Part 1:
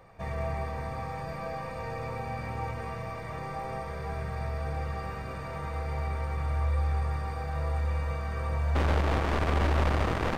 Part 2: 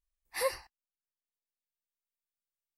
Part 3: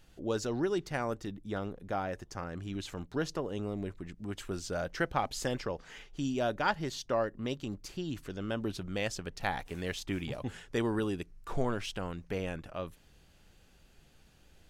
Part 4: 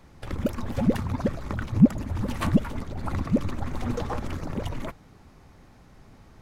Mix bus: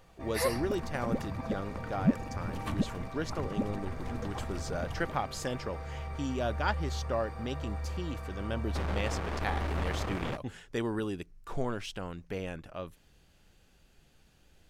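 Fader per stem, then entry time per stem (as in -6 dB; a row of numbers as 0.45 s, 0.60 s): -7.5 dB, +1.0 dB, -1.5 dB, -10.0 dB; 0.00 s, 0.00 s, 0.00 s, 0.25 s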